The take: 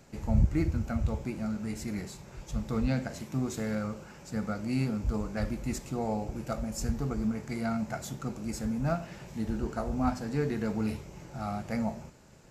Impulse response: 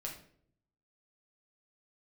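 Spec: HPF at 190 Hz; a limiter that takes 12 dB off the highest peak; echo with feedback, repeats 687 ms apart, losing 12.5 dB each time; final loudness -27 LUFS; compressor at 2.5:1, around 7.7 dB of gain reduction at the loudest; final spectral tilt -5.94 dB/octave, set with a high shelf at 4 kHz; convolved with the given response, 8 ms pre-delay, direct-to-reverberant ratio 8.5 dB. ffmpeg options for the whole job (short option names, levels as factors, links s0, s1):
-filter_complex "[0:a]highpass=190,highshelf=f=4000:g=-8,acompressor=threshold=0.0141:ratio=2.5,alimiter=level_in=4.22:limit=0.0631:level=0:latency=1,volume=0.237,aecho=1:1:687|1374|2061:0.237|0.0569|0.0137,asplit=2[s0][s1];[1:a]atrim=start_sample=2205,adelay=8[s2];[s1][s2]afir=irnorm=-1:irlink=0,volume=0.422[s3];[s0][s3]amix=inputs=2:normalize=0,volume=7.5"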